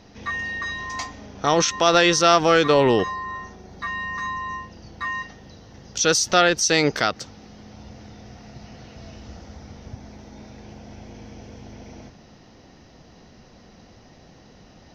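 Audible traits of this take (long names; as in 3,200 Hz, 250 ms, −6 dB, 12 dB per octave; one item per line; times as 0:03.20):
background noise floor −50 dBFS
spectral slope −3.0 dB per octave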